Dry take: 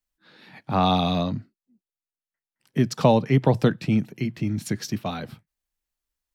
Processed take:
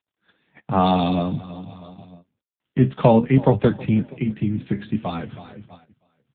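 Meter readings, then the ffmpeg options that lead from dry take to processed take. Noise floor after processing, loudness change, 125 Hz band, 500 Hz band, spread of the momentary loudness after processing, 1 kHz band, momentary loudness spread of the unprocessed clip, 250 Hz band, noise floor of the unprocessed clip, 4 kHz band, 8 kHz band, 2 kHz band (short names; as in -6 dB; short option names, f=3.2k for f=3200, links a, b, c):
under -85 dBFS, +2.5 dB, +2.5 dB, +3.5 dB, 19 LU, +2.5 dB, 12 LU, +3.5 dB, under -85 dBFS, -3.5 dB, under -40 dB, -0.5 dB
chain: -af "aecho=1:1:321|642|963:0.1|0.038|0.0144,areverse,acompressor=mode=upward:threshold=-33dB:ratio=2.5,areverse,flanger=delay=9.8:depth=5.6:regen=63:speed=0.54:shape=sinusoidal,agate=range=-19dB:threshold=-48dB:ratio=16:detection=peak,volume=8dB" -ar 8000 -c:a libopencore_amrnb -b:a 7950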